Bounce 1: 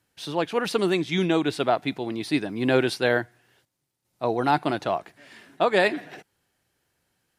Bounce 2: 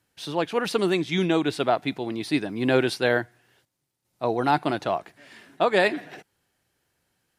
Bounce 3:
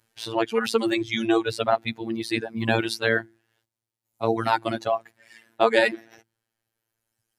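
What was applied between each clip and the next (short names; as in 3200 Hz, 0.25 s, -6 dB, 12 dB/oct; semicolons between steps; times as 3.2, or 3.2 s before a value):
nothing audible
notches 50/100/150/200/250/300/350 Hz; robotiser 113 Hz; reverb removal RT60 2 s; gain +4.5 dB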